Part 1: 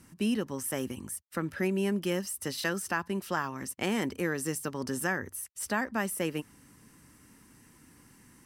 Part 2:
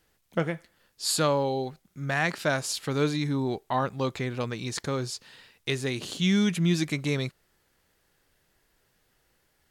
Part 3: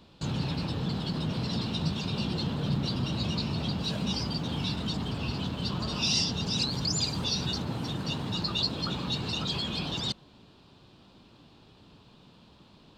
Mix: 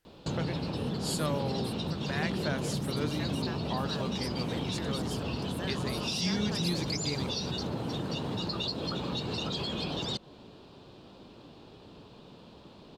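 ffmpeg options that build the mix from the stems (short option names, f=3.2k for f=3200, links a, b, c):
-filter_complex "[0:a]adelay=550,volume=-13.5dB[a];[1:a]volume=-9dB[b];[2:a]equalizer=f=480:w=0.93:g=8,acompressor=threshold=-32dB:ratio=6,adelay=50,volume=1.5dB[c];[a][b][c]amix=inputs=3:normalize=0"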